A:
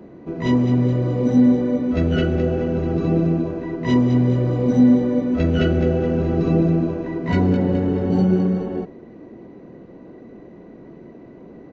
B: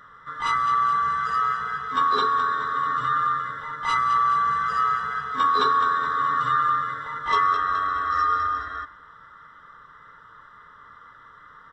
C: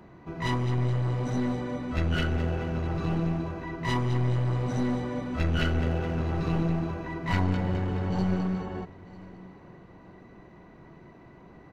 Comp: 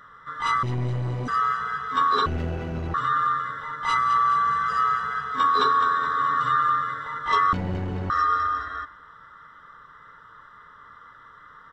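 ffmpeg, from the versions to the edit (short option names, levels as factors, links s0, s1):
-filter_complex "[2:a]asplit=3[s0][s1][s2];[1:a]asplit=4[s3][s4][s5][s6];[s3]atrim=end=0.632[s7];[s0]atrim=start=0.628:end=1.282[s8];[s4]atrim=start=1.278:end=2.262[s9];[s1]atrim=start=2.258:end=2.942[s10];[s5]atrim=start=2.938:end=7.532[s11];[s2]atrim=start=7.528:end=8.102[s12];[s6]atrim=start=8.098[s13];[s7][s8]acrossfade=d=0.004:c1=hsin:c2=hsin[s14];[s14][s9]acrossfade=d=0.004:c1=hsin:c2=hsin[s15];[s15][s10]acrossfade=d=0.004:c1=hsin:c2=hsin[s16];[s16][s11]acrossfade=d=0.004:c1=hsin:c2=hsin[s17];[s17][s12]acrossfade=d=0.004:c1=hsin:c2=hsin[s18];[s18][s13]acrossfade=d=0.004:c1=hsin:c2=hsin"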